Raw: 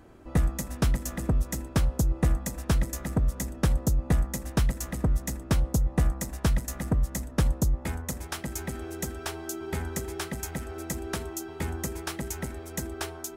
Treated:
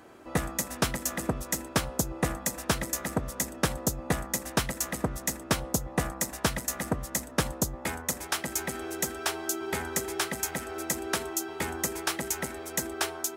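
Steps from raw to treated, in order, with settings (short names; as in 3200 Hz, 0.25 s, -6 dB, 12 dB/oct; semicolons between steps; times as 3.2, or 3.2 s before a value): HPF 510 Hz 6 dB/oct; gain +6 dB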